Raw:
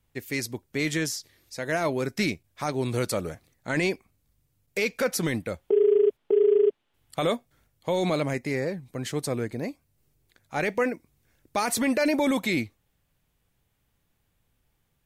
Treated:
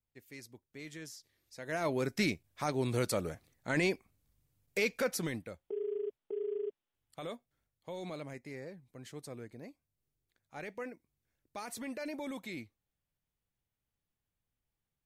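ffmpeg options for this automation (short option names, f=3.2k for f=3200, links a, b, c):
-af "volume=-5dB,afade=t=in:st=0.97:d=0.67:silence=0.421697,afade=t=in:st=1.64:d=0.33:silence=0.421697,afade=t=out:st=4.84:d=0.78:silence=0.251189"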